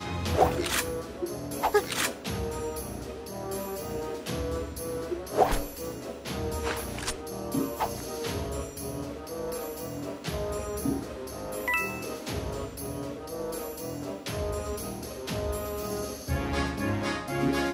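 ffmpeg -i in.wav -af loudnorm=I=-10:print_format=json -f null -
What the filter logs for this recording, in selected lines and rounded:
"input_i" : "-31.7",
"input_tp" : "-9.0",
"input_lra" : "3.1",
"input_thresh" : "-41.7",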